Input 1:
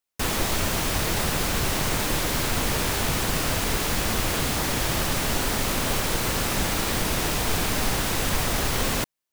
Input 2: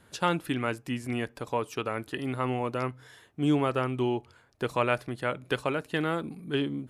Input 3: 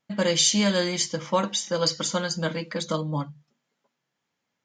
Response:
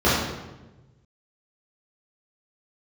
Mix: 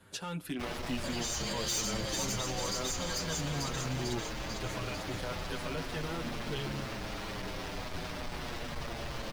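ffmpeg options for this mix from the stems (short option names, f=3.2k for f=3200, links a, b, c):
-filter_complex "[0:a]afwtdn=0.0251,equalizer=f=610:t=o:w=0.27:g=3.5,asoftclip=type=tanh:threshold=-26.5dB,adelay=400,volume=-5.5dB[a];[1:a]volume=2.5dB[b];[2:a]crystalizer=i=4:c=0,adelay=850,volume=-10dB,asplit=2[c][d];[d]volume=-8dB[e];[b][c]amix=inputs=2:normalize=0,acrossover=split=150|3000[f][g][h];[g]acompressor=threshold=-37dB:ratio=1.5[i];[f][i][h]amix=inputs=3:normalize=0,alimiter=limit=-23.5dB:level=0:latency=1:release=112,volume=0dB[j];[e]aecho=0:1:446|892|1338|1784|2230|2676|3122|3568|4014:1|0.58|0.336|0.195|0.113|0.0656|0.0381|0.0221|0.0128[k];[a][j][k]amix=inputs=3:normalize=0,volume=26.5dB,asoftclip=hard,volume=-26.5dB,asplit=2[l][m];[m]adelay=7.4,afreqshift=-0.4[n];[l][n]amix=inputs=2:normalize=1"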